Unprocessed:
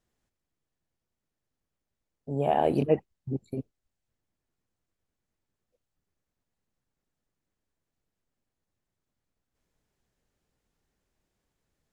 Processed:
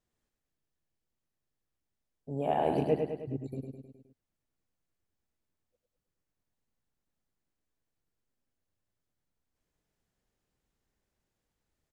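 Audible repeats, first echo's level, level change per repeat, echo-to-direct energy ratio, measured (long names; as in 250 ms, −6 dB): 5, −5.0 dB, −5.0 dB, −3.5 dB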